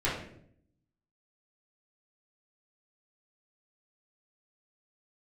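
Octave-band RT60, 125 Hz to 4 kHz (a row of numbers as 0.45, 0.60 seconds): 1.0, 0.95, 0.75, 0.55, 0.55, 0.45 seconds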